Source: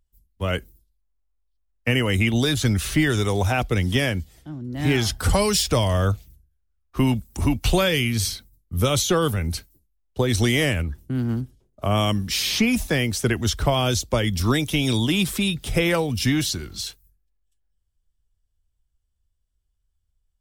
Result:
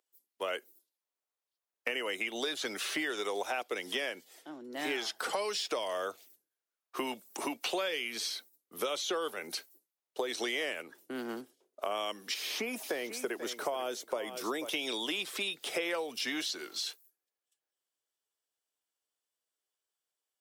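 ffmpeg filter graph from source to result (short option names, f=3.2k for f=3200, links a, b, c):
-filter_complex "[0:a]asettb=1/sr,asplit=3[a][b][c];[a]atrim=end=12.344[d];[b]atrim=start=12.34:end=14.69,asetpts=PTS-STARTPTS,afade=t=in:d=0.004:c=qsin,afade=t=out:st=2.346:d=0.004:c=qsin,equalizer=f=4k:t=o:w=2.6:g=-10,aecho=1:1:489|978:0.211|0.0338,atrim=end_sample=103635[e];[c]atrim=start=14.686[f];[d][e]acrossfade=d=0.004:c1=hsin:c2=qsin[g];[g][f]acrossfade=d=0.004:c1=qsin:c2=hsin,acrossover=split=5300[h][i];[i]acompressor=threshold=-40dB:ratio=4:attack=1:release=60[j];[h][j]amix=inputs=2:normalize=0,highpass=f=380:w=0.5412,highpass=f=380:w=1.3066,acompressor=threshold=-33dB:ratio=4"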